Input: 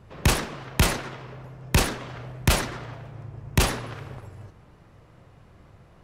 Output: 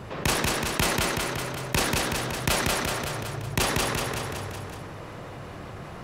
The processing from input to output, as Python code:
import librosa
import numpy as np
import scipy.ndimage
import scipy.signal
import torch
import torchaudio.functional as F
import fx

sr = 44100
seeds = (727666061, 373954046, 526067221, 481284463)

y = fx.low_shelf(x, sr, hz=120.0, db=-11.5)
y = fx.echo_feedback(y, sr, ms=187, feedback_pct=47, wet_db=-3.5)
y = fx.env_flatten(y, sr, amount_pct=50)
y = F.gain(torch.from_numpy(y), -2.5).numpy()